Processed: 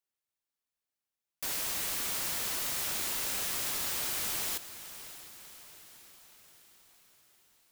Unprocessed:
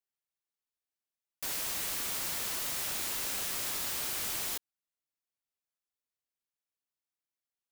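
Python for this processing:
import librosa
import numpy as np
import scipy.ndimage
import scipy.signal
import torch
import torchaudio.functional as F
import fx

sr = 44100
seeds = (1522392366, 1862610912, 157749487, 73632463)

y = fx.echo_diffused(x, sr, ms=606, feedback_pct=56, wet_db=-13.5)
y = F.gain(torch.from_numpy(y), 1.0).numpy()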